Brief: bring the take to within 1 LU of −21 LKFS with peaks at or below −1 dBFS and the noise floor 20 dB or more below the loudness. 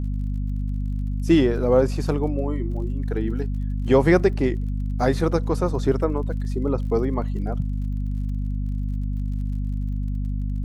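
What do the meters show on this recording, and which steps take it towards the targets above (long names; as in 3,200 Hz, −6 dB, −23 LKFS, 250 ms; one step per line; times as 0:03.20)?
crackle rate 43 per second; mains hum 50 Hz; hum harmonics up to 250 Hz; level of the hum −23 dBFS; integrated loudness −24.0 LKFS; sample peak −4.5 dBFS; target loudness −21.0 LKFS
→ click removal
mains-hum notches 50/100/150/200/250 Hz
level +3 dB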